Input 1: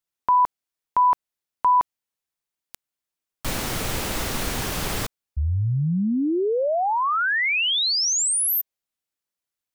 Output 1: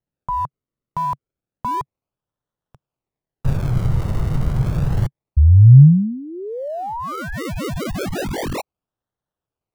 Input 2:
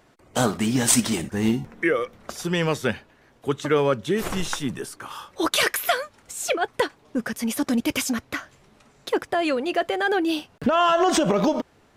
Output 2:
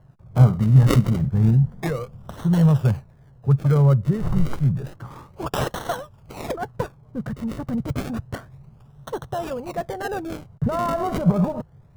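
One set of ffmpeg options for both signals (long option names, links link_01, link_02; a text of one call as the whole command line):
ffmpeg -i in.wav -filter_complex "[0:a]lowshelf=frequency=200:width_type=q:width=3:gain=12.5,acrossover=split=1400[link_01][link_02];[link_02]acrusher=samples=36:mix=1:aa=0.000001:lfo=1:lforange=36:lforate=0.3[link_03];[link_01][link_03]amix=inputs=2:normalize=0,volume=-2.5dB" out.wav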